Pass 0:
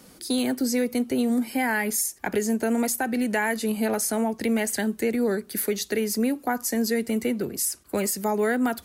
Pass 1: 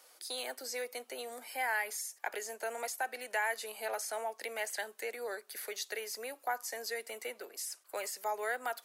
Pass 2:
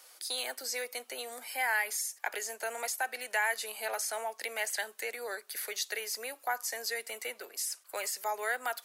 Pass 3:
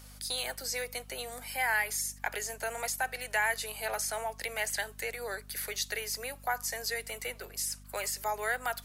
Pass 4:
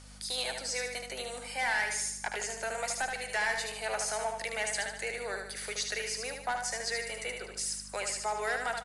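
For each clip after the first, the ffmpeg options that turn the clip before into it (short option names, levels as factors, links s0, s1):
-filter_complex "[0:a]acrossover=split=5900[s0][s1];[s1]acompressor=threshold=0.02:ratio=4:attack=1:release=60[s2];[s0][s2]amix=inputs=2:normalize=0,highpass=f=560:w=0.5412,highpass=f=560:w=1.3066,volume=0.447"
-af "equalizer=f=270:w=0.32:g=-7,volume=1.88"
-af "aeval=exprs='val(0)+0.00251*(sin(2*PI*50*n/s)+sin(2*PI*2*50*n/s)/2+sin(2*PI*3*50*n/s)/3+sin(2*PI*4*50*n/s)/4+sin(2*PI*5*50*n/s)/5)':c=same,volume=1.12"
-filter_complex "[0:a]asoftclip=type=hard:threshold=0.0473,asplit=2[s0][s1];[s1]aecho=0:1:75|150|225|300|375|450:0.562|0.259|0.119|0.0547|0.0252|0.0116[s2];[s0][s2]amix=inputs=2:normalize=0,aresample=22050,aresample=44100"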